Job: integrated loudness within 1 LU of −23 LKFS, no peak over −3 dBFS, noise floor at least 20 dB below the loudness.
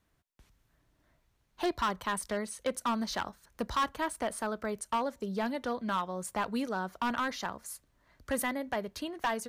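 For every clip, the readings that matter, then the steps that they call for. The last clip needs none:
share of clipped samples 1.6%; peaks flattened at −24.5 dBFS; integrated loudness −34.0 LKFS; sample peak −24.5 dBFS; target loudness −23.0 LKFS
→ clipped peaks rebuilt −24.5 dBFS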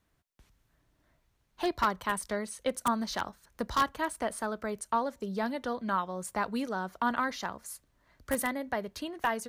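share of clipped samples 0.0%; integrated loudness −33.0 LKFS; sample peak −15.5 dBFS; target loudness −23.0 LKFS
→ level +10 dB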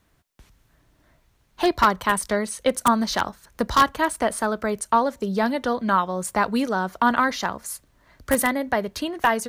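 integrated loudness −23.0 LKFS; sample peak −5.5 dBFS; background noise floor −64 dBFS

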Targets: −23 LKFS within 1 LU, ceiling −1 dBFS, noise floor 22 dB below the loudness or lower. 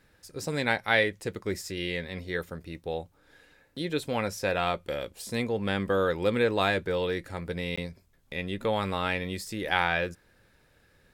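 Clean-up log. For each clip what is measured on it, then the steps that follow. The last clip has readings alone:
number of dropouts 1; longest dropout 15 ms; integrated loudness −29.5 LKFS; sample peak −8.0 dBFS; target loudness −23.0 LKFS
→ repair the gap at 0:07.76, 15 ms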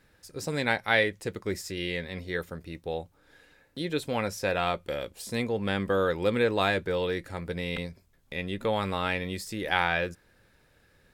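number of dropouts 0; integrated loudness −29.5 LKFS; sample peak −8.0 dBFS; target loudness −23.0 LKFS
→ level +6.5 dB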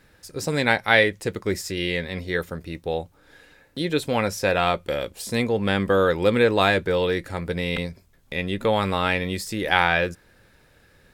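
integrated loudness −23.0 LKFS; sample peak −1.5 dBFS; background noise floor −58 dBFS

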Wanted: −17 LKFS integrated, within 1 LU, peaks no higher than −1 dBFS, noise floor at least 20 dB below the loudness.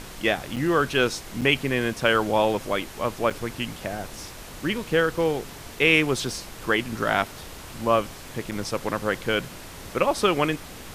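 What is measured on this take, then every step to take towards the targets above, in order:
number of dropouts 4; longest dropout 6.7 ms; background noise floor −41 dBFS; target noise floor −45 dBFS; integrated loudness −24.5 LKFS; sample peak −5.0 dBFS; target loudness −17.0 LKFS
→ repair the gap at 0:00.56/0:01.41/0:03.30/0:08.51, 6.7 ms
noise reduction from a noise print 6 dB
level +7.5 dB
brickwall limiter −1 dBFS

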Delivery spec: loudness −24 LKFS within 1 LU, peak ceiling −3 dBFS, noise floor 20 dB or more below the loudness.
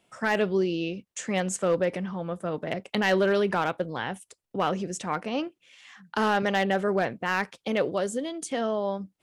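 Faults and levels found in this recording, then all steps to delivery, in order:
share of clipped samples 0.3%; peaks flattened at −16.0 dBFS; integrated loudness −28.0 LKFS; sample peak −16.0 dBFS; target loudness −24.0 LKFS
→ clipped peaks rebuilt −16 dBFS
level +4 dB

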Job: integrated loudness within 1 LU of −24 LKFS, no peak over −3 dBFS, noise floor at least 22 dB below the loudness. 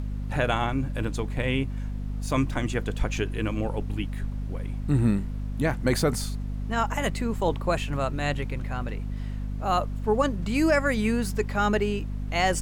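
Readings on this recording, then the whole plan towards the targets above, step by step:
mains hum 50 Hz; hum harmonics up to 250 Hz; level of the hum −28 dBFS; background noise floor −32 dBFS; target noise floor −50 dBFS; integrated loudness −27.5 LKFS; sample peak −11.0 dBFS; target loudness −24.0 LKFS
→ hum removal 50 Hz, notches 5
noise reduction from a noise print 18 dB
level +3.5 dB

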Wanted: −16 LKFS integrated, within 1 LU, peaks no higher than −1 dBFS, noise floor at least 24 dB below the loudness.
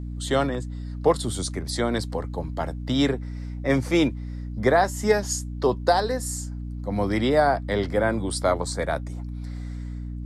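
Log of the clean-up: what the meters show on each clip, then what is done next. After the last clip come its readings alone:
mains hum 60 Hz; hum harmonics up to 300 Hz; level of the hum −30 dBFS; integrated loudness −25.0 LKFS; sample peak −8.0 dBFS; target loudness −16.0 LKFS
→ mains-hum notches 60/120/180/240/300 Hz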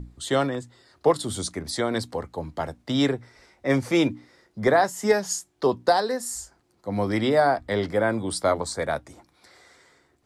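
mains hum none found; integrated loudness −25.0 LKFS; sample peak −8.5 dBFS; target loudness −16.0 LKFS
→ level +9 dB
brickwall limiter −1 dBFS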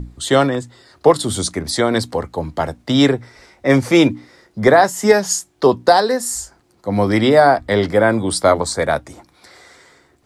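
integrated loudness −16.5 LKFS; sample peak −1.0 dBFS; background noise floor −57 dBFS

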